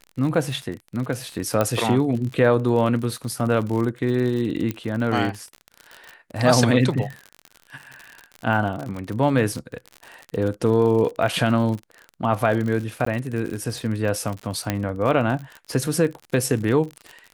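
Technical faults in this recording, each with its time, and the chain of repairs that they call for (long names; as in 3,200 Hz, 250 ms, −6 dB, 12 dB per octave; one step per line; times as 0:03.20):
surface crackle 51 per second −28 dBFS
0:01.61: click −8 dBFS
0:04.71: click −13 dBFS
0:13.05–0:13.06: drop-out 14 ms
0:14.70: click −8 dBFS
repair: click removal
repair the gap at 0:13.05, 14 ms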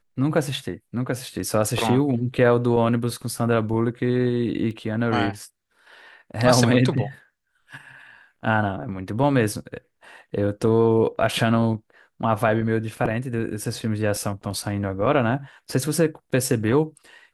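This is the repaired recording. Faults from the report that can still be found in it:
0:04.71: click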